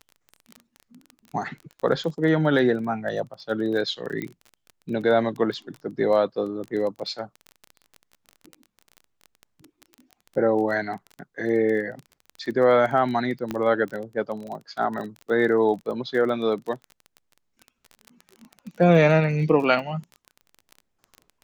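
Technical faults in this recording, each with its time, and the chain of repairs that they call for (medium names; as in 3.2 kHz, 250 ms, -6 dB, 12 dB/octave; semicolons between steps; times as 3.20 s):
crackle 20 per s -31 dBFS
4.22 s: pop -18 dBFS
13.51 s: pop -15 dBFS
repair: de-click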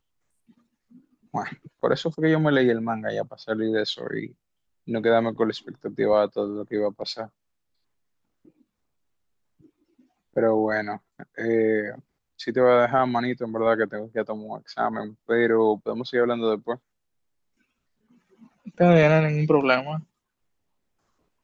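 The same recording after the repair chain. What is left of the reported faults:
nothing left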